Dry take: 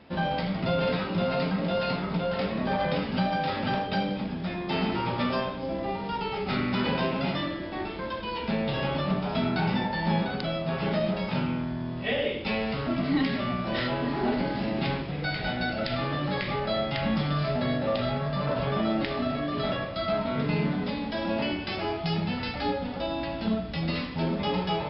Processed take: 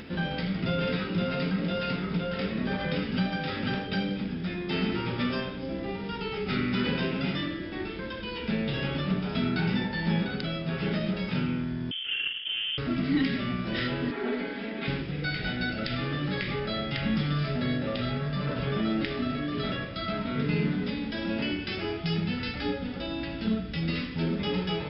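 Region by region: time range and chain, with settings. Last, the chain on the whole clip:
11.91–12.78 s: median filter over 41 samples + distance through air 160 m + frequency inversion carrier 3.3 kHz
14.11–14.88 s: three-band isolator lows -19 dB, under 300 Hz, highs -24 dB, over 3.9 kHz + band-stop 2.8 kHz, Q 15 + comb 4.4 ms, depth 70%
whole clip: high-order bell 800 Hz -9.5 dB 1.2 oct; band-stop 4.2 kHz, Q 18; upward compressor, threshold -34 dBFS

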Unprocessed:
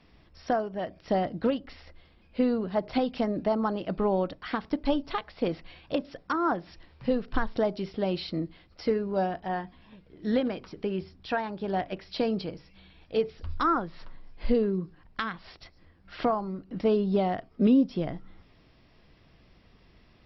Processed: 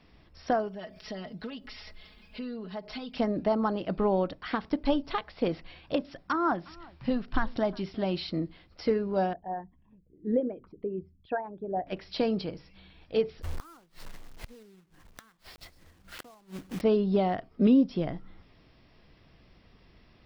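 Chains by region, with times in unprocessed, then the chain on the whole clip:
0.68–3.16 s: treble shelf 2 kHz +10.5 dB + comb 4.7 ms, depth 89% + compression 2.5:1, threshold -43 dBFS
6.03–8.31 s: peaking EQ 470 Hz -13.5 dB 0.22 oct + delay 359 ms -23.5 dB
9.33–11.87 s: resonances exaggerated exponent 2 + low-pass 2 kHz + upward expansion, over -37 dBFS
13.42–16.82 s: block-companded coder 3-bit + inverted gate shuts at -25 dBFS, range -28 dB
whole clip: none

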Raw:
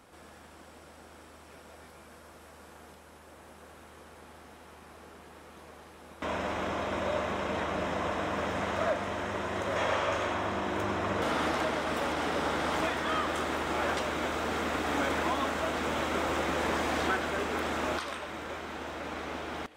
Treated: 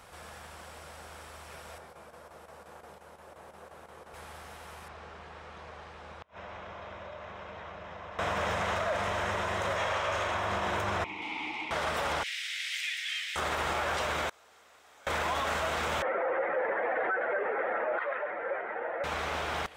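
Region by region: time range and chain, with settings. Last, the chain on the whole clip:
1.78–4.14 s: high-pass 590 Hz 6 dB/octave + tilt shelf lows +9.5 dB, about 860 Hz + square tremolo 5.7 Hz, depth 60%, duty 85%
4.88–8.19 s: compression 12:1, threshold -44 dBFS + inverted gate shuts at -33 dBFS, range -28 dB + distance through air 130 m
11.04–11.71 s: vowel filter u + resonant high shelf 1.8 kHz +9 dB, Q 1.5
12.23–13.36 s: steep high-pass 2 kHz 48 dB/octave + treble shelf 5.6 kHz -5.5 dB + loudspeaker Doppler distortion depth 0.16 ms
14.29–15.07 s: high-pass 58 Hz + tone controls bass -10 dB, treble +8 dB + inverted gate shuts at -25 dBFS, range -32 dB
16.02–19.04 s: spectral contrast enhancement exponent 1.7 + cabinet simulation 420–2100 Hz, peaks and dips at 510 Hz +8 dB, 1.1 kHz -7 dB, 1.9 kHz +7 dB
whole clip: peaking EQ 280 Hz -14.5 dB 0.86 oct; peak limiter -29 dBFS; trim +6.5 dB

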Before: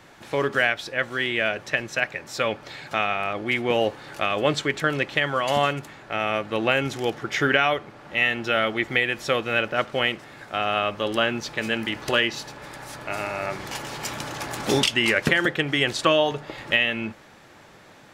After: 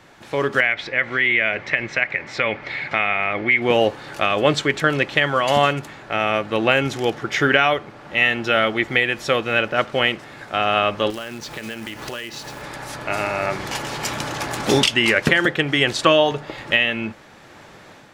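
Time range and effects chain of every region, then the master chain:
0.60–3.62 s: peaking EQ 2.1 kHz +14 dB 0.36 oct + compression 2:1, threshold -23 dBFS + low-pass 4 kHz
11.10–12.62 s: companded quantiser 4-bit + compression 5:1, threshold -34 dBFS
whole clip: treble shelf 11 kHz -5 dB; level rider gain up to 5 dB; trim +1 dB

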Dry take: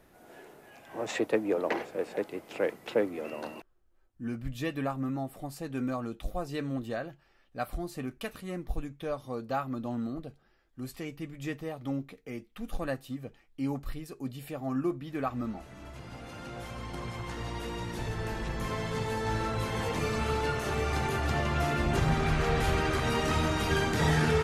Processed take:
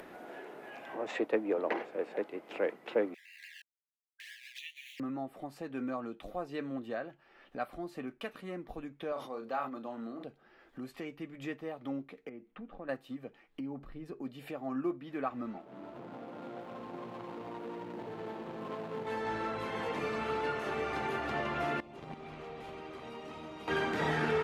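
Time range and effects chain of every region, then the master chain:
3.14–5.00 s: send-on-delta sampling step -42 dBFS + brick-wall FIR high-pass 1.6 kHz + touch-sensitive flanger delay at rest 2.1 ms, full sweep at -45 dBFS
9.12–10.24 s: high-pass 410 Hz 6 dB/octave + doubling 35 ms -9 dB + decay stretcher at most 74 dB/s
12.29–12.89 s: compression 1.5:1, threshold -55 dBFS + tape spacing loss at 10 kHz 39 dB
13.60–14.22 s: tilt EQ -2.5 dB/octave + compression 2.5:1, threshold -35 dBFS
15.58–19.07 s: median filter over 25 samples + high-pass 140 Hz + tape noise reduction on one side only decoder only
21.80–23.68 s: gate -23 dBFS, range -17 dB + peaking EQ 1.6 kHz -10 dB 0.56 oct
whole clip: three-band isolator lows -19 dB, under 190 Hz, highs -14 dB, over 3.5 kHz; upward compressor, threshold -35 dBFS; trim -2.5 dB

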